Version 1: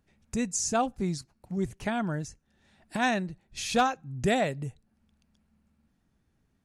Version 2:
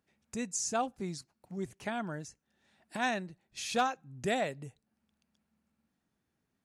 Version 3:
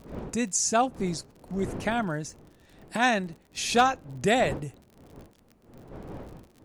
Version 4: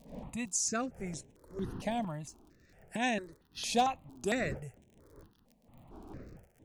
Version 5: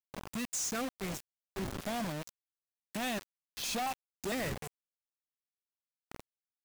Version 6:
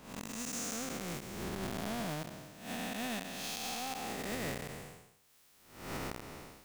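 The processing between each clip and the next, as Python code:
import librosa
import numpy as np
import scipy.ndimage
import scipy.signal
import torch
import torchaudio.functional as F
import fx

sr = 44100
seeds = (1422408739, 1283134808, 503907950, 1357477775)

y1 = fx.highpass(x, sr, hz=250.0, slope=6)
y1 = y1 * librosa.db_to_amplitude(-4.5)
y2 = fx.dmg_wind(y1, sr, seeds[0], corner_hz=370.0, level_db=-52.0)
y2 = fx.dmg_crackle(y2, sr, seeds[1], per_s=49.0, level_db=-50.0)
y2 = y2 * librosa.db_to_amplitude(8.5)
y3 = fx.phaser_held(y2, sr, hz=4.4, low_hz=360.0, high_hz=4600.0)
y3 = y3 * librosa.db_to_amplitude(-5.0)
y4 = fx.quant_companded(y3, sr, bits=2)
y4 = y4 * librosa.db_to_amplitude(-8.0)
y5 = fx.spec_blur(y4, sr, span_ms=402.0)
y5 = fx.recorder_agc(y5, sr, target_db=-33.0, rise_db_per_s=42.0, max_gain_db=30)
y5 = y5 * librosa.db_to_amplitude(2.5)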